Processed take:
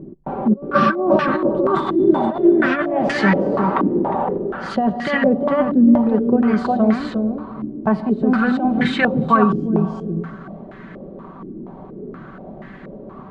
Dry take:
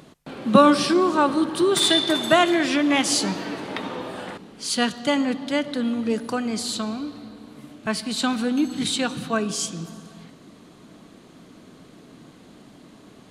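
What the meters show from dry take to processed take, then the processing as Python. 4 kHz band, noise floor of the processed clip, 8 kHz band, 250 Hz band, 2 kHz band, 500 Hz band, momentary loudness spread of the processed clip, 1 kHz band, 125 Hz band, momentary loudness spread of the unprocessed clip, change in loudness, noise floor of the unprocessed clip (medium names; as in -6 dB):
-11.5 dB, -38 dBFS, under -20 dB, +6.5 dB, +4.5 dB, +5.5 dB, 21 LU, +5.0 dB, +10.5 dB, 15 LU, +4.0 dB, -49 dBFS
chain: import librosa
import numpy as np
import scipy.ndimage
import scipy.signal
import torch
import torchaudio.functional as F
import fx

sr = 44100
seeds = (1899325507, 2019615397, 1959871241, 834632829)

y = fx.low_shelf(x, sr, hz=85.0, db=10.5)
y = fx.over_compress(y, sr, threshold_db=-22.0, ratio=-0.5)
y = y + 0.5 * np.pad(y, (int(5.2 * sr / 1000.0), 0))[:len(y)]
y = y + 10.0 ** (-5.5 / 20.0) * np.pad(y, (int(358 * sr / 1000.0), 0))[:len(y)]
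y = fx.filter_held_lowpass(y, sr, hz=4.2, low_hz=330.0, high_hz=1800.0)
y = y * librosa.db_to_amplitude(3.5)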